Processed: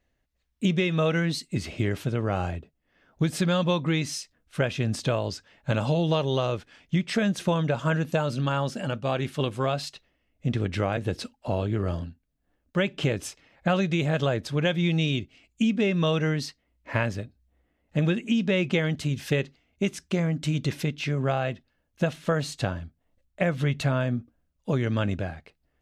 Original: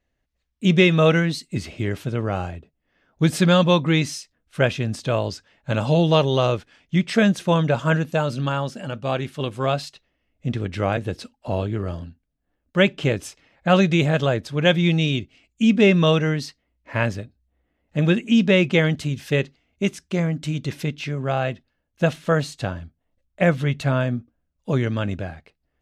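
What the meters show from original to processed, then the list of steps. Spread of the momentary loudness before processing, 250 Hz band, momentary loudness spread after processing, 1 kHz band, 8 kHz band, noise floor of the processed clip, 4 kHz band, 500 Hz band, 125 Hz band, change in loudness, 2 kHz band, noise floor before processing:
14 LU, -5.5 dB, 9 LU, -5.5 dB, -2.0 dB, -74 dBFS, -5.5 dB, -6.0 dB, -4.5 dB, -5.5 dB, -6.0 dB, -75 dBFS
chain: tremolo 1.6 Hz, depth 30%; compression 6:1, threshold -23 dBFS, peak gain reduction 11.5 dB; trim +2 dB

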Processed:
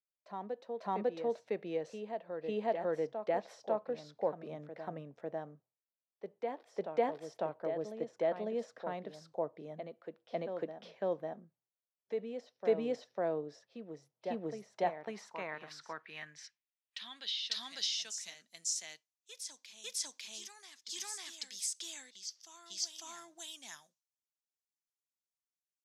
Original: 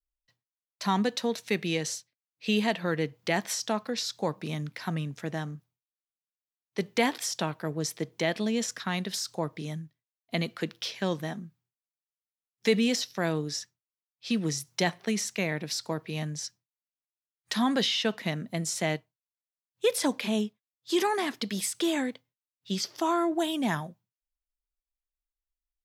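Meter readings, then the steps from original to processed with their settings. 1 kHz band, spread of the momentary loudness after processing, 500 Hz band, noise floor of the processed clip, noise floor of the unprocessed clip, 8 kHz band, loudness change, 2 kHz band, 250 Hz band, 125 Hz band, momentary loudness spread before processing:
-7.5 dB, 13 LU, -4.5 dB, under -85 dBFS, under -85 dBFS, -7.0 dB, -9.0 dB, -15.0 dB, -15.5 dB, -18.5 dB, 10 LU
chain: reverse echo 549 ms -7 dB; band-pass sweep 580 Hz -> 6.3 kHz, 14.60–18.05 s

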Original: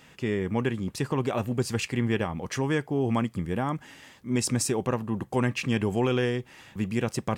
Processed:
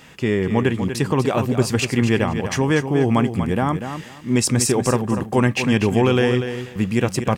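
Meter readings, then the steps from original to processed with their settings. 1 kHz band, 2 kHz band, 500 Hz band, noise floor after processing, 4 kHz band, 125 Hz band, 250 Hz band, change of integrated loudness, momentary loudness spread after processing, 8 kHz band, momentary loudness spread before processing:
+8.5 dB, +8.5 dB, +8.5 dB, -40 dBFS, +8.5 dB, +8.5 dB, +8.5 dB, +8.5 dB, 5 LU, +8.5 dB, 6 LU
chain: feedback delay 243 ms, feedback 20%, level -9 dB; trim +8 dB

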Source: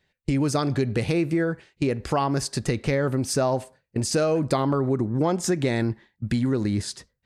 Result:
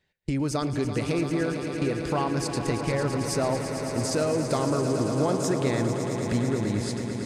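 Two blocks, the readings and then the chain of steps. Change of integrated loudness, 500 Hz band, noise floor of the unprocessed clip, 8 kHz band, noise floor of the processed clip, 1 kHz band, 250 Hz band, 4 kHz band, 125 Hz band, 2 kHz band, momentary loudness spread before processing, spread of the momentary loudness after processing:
-2.0 dB, -1.5 dB, -76 dBFS, -1.5 dB, -33 dBFS, -1.5 dB, -2.0 dB, -2.0 dB, -2.5 dB, -1.5 dB, 6 LU, 4 LU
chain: echo with a slow build-up 112 ms, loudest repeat 5, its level -11 dB; trim -4 dB

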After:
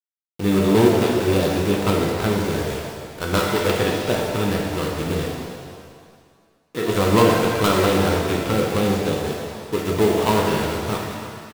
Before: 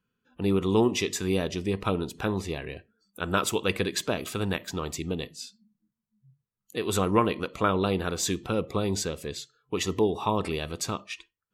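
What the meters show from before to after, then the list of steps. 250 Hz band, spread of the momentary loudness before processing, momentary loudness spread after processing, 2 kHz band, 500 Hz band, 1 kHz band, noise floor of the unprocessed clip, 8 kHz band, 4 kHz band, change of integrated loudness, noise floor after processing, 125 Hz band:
+8.0 dB, 13 LU, 14 LU, +8.0 dB, +8.5 dB, +7.5 dB, under -85 dBFS, +2.0 dB, +6.0 dB, +8.0 dB, -61 dBFS, +8.5 dB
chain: dead-time distortion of 0.21 ms; bit crusher 7-bit; on a send: feedback delay 304 ms, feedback 39%, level -15.5 dB; on the sum: pitch-shifted reverb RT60 1.7 s, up +7 st, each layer -8 dB, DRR -1.5 dB; trim +4.5 dB

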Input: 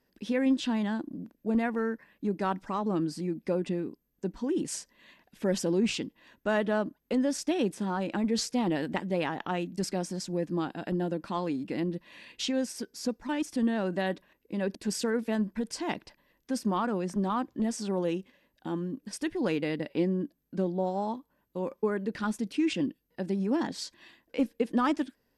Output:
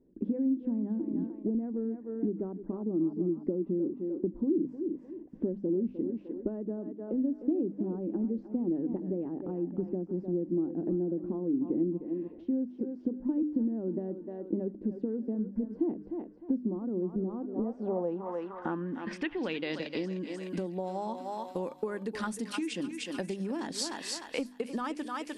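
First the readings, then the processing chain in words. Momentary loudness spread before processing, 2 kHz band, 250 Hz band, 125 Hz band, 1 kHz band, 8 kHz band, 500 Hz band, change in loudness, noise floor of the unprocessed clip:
9 LU, -7.0 dB, -1.0 dB, -4.0 dB, -7.5 dB, no reading, -2.5 dB, -2.5 dB, -75 dBFS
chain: hum notches 50/100/150/200/250/300 Hz; on a send: thinning echo 303 ms, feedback 46%, high-pass 610 Hz, level -8 dB; on the sum: compression 12:1, threshold -38 dBFS, peak gain reduction 17 dB; low-pass sweep 330 Hz -> 10 kHz, 17.22–20.62 s; dynamic bell 120 Hz, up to -5 dB, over -58 dBFS, Q 1.4; trim +7.5 dB

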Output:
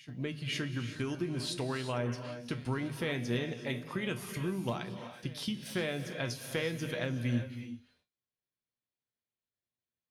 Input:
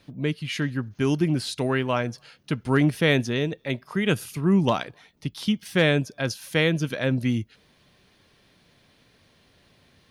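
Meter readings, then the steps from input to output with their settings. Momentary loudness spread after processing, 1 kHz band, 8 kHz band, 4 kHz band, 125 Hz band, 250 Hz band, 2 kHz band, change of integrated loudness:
6 LU, -11.5 dB, -6.5 dB, -9.0 dB, -10.5 dB, -12.0 dB, -11.0 dB, -11.5 dB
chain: hum notches 50/100/150/200/250 Hz; gate -53 dBFS, range -36 dB; compression, threshold -27 dBFS, peak gain reduction 11 dB; feedback comb 120 Hz, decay 0.24 s, harmonics all, mix 70%; on a send: reverse echo 521 ms -20 dB; on the sum: gated-style reverb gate 400 ms rising, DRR 8 dB; trim +2 dB

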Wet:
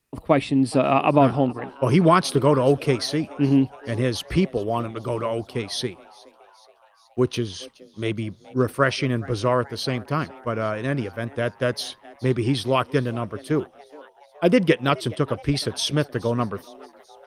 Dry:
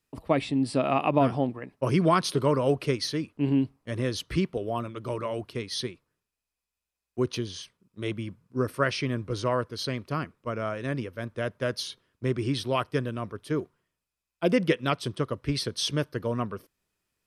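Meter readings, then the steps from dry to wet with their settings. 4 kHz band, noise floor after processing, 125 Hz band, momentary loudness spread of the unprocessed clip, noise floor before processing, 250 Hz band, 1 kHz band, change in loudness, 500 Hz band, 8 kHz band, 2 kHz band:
+4.0 dB, -56 dBFS, +6.0 dB, 10 LU, under -85 dBFS, +6.0 dB, +6.0 dB, +6.0 dB, +6.0 dB, +4.0 dB, +5.5 dB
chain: frequency-shifting echo 421 ms, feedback 61%, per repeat +140 Hz, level -22 dB; trim +6 dB; Opus 32 kbps 48 kHz

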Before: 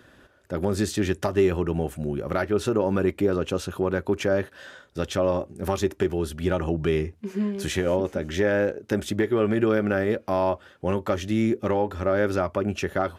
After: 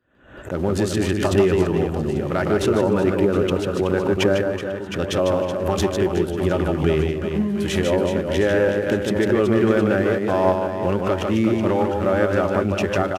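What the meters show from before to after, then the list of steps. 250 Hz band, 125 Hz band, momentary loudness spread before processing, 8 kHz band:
+5.0 dB, +5.5 dB, 7 LU, +3.0 dB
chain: local Wiener filter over 9 samples; spectral noise reduction 22 dB; peaking EQ 2.9 kHz +4 dB 0.24 oct; in parallel at -9 dB: small samples zeroed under -34.5 dBFS; on the sum: reverse bouncing-ball echo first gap 150 ms, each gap 1.5×, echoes 5; resampled via 32 kHz; swell ahead of each attack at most 96 dB/s

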